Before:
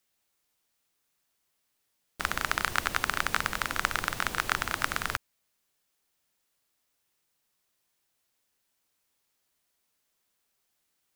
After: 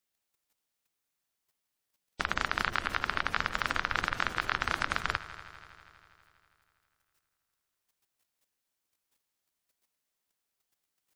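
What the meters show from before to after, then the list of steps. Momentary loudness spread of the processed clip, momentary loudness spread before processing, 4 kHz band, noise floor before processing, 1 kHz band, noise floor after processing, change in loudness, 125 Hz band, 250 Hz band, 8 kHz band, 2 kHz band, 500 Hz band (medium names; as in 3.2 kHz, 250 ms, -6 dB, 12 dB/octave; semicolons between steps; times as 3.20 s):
6 LU, 4 LU, -2.0 dB, -78 dBFS, -1.0 dB, -85 dBFS, -1.5 dB, -1.0 dB, -1.0 dB, -10.5 dB, -1.0 dB, -1.0 dB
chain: level held to a coarse grid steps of 11 dB; spectral gate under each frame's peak -20 dB strong; multi-head delay 81 ms, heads all three, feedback 67%, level -21 dB; trim +3 dB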